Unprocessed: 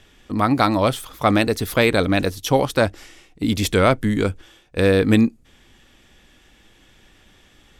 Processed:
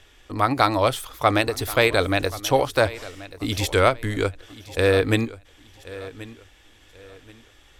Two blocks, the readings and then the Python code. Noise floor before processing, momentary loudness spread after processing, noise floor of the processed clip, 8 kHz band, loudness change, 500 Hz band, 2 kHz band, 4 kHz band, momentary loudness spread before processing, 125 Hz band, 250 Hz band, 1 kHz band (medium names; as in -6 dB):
-54 dBFS, 17 LU, -54 dBFS, -1.0 dB, -2.5 dB, -1.5 dB, -0.5 dB, -0.5 dB, 6 LU, -3.5 dB, -7.5 dB, -0.5 dB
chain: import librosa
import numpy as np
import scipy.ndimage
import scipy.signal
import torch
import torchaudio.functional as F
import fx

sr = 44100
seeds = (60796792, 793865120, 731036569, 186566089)

y = fx.peak_eq(x, sr, hz=200.0, db=-15.0, octaves=0.75)
y = fx.echo_feedback(y, sr, ms=1081, feedback_pct=30, wet_db=-17.5)
y = fx.end_taper(y, sr, db_per_s=280.0)